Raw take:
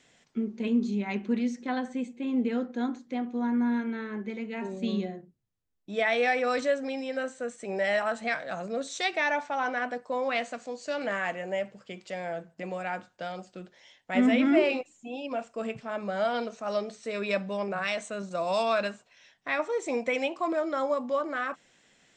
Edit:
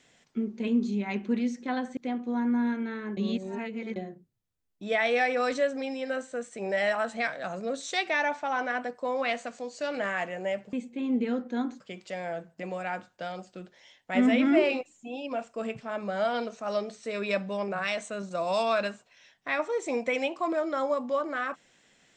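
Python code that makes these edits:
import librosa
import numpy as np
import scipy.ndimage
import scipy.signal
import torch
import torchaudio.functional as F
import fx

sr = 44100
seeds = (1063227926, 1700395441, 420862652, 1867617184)

y = fx.edit(x, sr, fx.move(start_s=1.97, length_s=1.07, to_s=11.8),
    fx.reverse_span(start_s=4.24, length_s=0.79), tone=tone)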